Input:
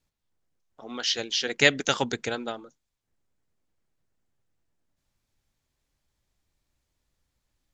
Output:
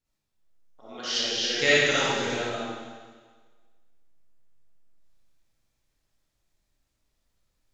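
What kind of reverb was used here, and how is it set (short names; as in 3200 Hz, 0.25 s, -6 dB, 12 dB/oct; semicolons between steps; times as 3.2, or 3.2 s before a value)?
digital reverb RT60 1.5 s, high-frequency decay 1×, pre-delay 15 ms, DRR -10 dB; gain -9 dB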